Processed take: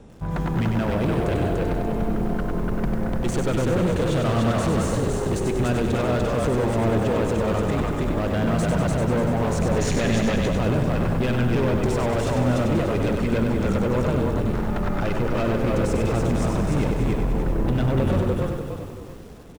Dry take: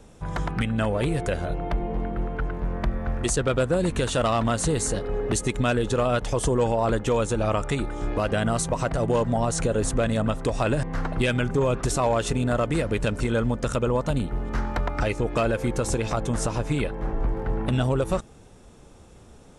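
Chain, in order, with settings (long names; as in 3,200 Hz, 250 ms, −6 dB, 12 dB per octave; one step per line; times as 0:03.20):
echo with shifted repeats 293 ms, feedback 32%, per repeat −33 Hz, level −3 dB
hard clipping −24 dBFS, distortion −8 dB
high-shelf EQ 6,300 Hz −12 dB
on a send: single-tap delay 676 ms −17 dB
on the sum: gain on a spectral selection 0:09.77–0:10.48, 1,600–7,300 Hz +8 dB
parametric band 190 Hz +6 dB 2.6 octaves
feedback echo at a low word length 97 ms, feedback 55%, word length 8 bits, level −5 dB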